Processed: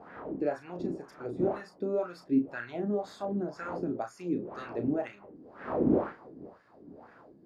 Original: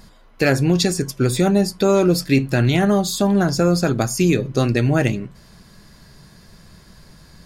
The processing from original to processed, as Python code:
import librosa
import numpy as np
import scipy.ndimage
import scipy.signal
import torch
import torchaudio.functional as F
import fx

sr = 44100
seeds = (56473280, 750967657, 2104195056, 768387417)

y = fx.dmg_wind(x, sr, seeds[0], corner_hz=320.0, level_db=-19.0)
y = fx.wah_lfo(y, sr, hz=2.0, low_hz=270.0, high_hz=1700.0, q=3.4)
y = fx.doubler(y, sr, ms=34.0, db=-8.0)
y = y * 10.0 ** (-8.0 / 20.0)